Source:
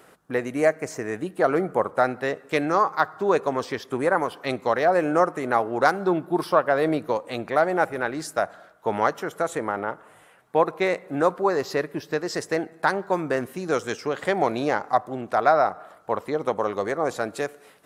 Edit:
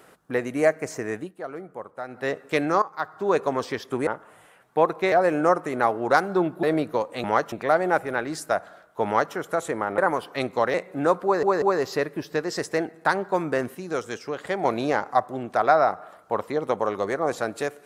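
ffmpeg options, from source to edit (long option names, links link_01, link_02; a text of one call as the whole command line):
ffmpeg -i in.wav -filter_complex "[0:a]asplit=15[link_01][link_02][link_03][link_04][link_05][link_06][link_07][link_08][link_09][link_10][link_11][link_12][link_13][link_14][link_15];[link_01]atrim=end=1.34,asetpts=PTS-STARTPTS,afade=type=out:start_time=1.13:duration=0.21:silence=0.199526[link_16];[link_02]atrim=start=1.34:end=2.08,asetpts=PTS-STARTPTS,volume=-14dB[link_17];[link_03]atrim=start=2.08:end=2.82,asetpts=PTS-STARTPTS,afade=type=in:duration=0.21:silence=0.199526,afade=type=out:start_time=0.736:duration=0.004:curve=hsin:silence=0.158489[link_18];[link_04]atrim=start=2.82:end=4.072,asetpts=PTS-STARTPTS,afade=type=in:duration=0.58:silence=0.158489[link_19];[link_05]atrim=start=9.848:end=10.902[link_20];[link_06]atrim=start=4.828:end=6.342[link_21];[link_07]atrim=start=6.778:end=7.392[link_22];[link_08]atrim=start=8.928:end=9.212[link_23];[link_09]atrim=start=7.388:end=9.852[link_24];[link_10]atrim=start=4.068:end=4.832[link_25];[link_11]atrim=start=10.898:end=11.592[link_26];[link_12]atrim=start=11.398:end=11.592[link_27];[link_13]atrim=start=11.398:end=13.532[link_28];[link_14]atrim=start=13.528:end=14.432,asetpts=PTS-STARTPTS,volume=-4dB[link_29];[link_15]atrim=start=14.428[link_30];[link_16][link_17][link_18][link_19]concat=n=4:v=0:a=1[link_31];[link_31][link_20]acrossfade=duration=0.004:curve1=hsin:curve2=hsin[link_32];[link_32][link_21]acrossfade=duration=0.004:curve1=hsin:curve2=hsin[link_33];[link_33][link_22]acrossfade=duration=0.004:curve1=hsin:curve2=hsin[link_34];[link_34][link_23]acrossfade=duration=0.004:curve1=hsin:curve2=hsin[link_35];[link_35][link_24]acrossfade=duration=0.004:curve1=hsin:curve2=hsin[link_36];[link_36][link_25]acrossfade=duration=0.004:curve1=hsin:curve2=hsin[link_37];[link_37][link_26]acrossfade=duration=0.004:curve1=hsin:curve2=hsin[link_38];[link_38][link_27]acrossfade=duration=0.004:curve1=hsin:curve2=hsin[link_39];[link_39][link_28]acrossfade=duration=0.004:curve1=hsin:curve2=hsin[link_40];[link_40][link_29]acrossfade=duration=0.004:curve1=hsin:curve2=hsin[link_41];[link_41][link_30]acrossfade=duration=0.004:curve1=hsin:curve2=hsin" out.wav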